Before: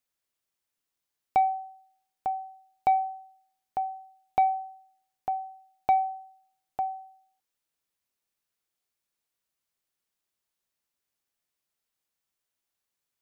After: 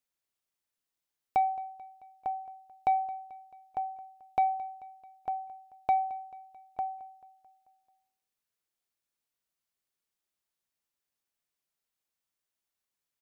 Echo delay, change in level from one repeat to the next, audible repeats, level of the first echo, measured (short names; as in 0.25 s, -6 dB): 0.219 s, -5.0 dB, 4, -19.5 dB